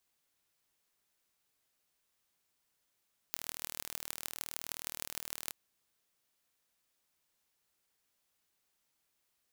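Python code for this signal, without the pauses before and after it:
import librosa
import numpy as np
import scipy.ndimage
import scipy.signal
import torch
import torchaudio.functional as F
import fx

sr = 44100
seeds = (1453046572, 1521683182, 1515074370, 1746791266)

y = fx.impulse_train(sr, length_s=2.17, per_s=39.2, accent_every=6, level_db=-8.5)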